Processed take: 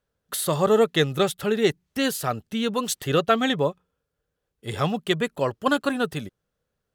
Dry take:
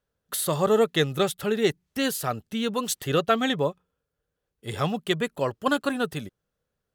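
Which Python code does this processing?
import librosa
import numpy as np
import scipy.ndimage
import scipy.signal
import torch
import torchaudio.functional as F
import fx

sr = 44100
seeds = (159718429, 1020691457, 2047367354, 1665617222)

y = fx.high_shelf(x, sr, hz=9600.0, db=-3.5)
y = F.gain(torch.from_numpy(y), 2.0).numpy()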